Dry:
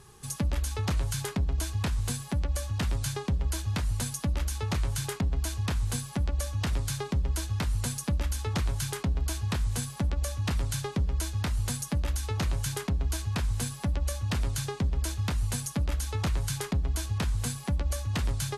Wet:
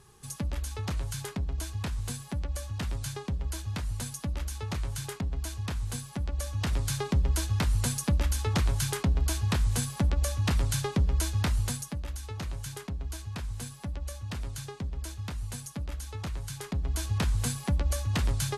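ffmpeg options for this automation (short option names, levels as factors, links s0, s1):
-af "volume=3.55,afade=t=in:st=6.23:d=0.91:silence=0.473151,afade=t=out:st=11.5:d=0.46:silence=0.334965,afade=t=in:st=16.57:d=0.59:silence=0.375837"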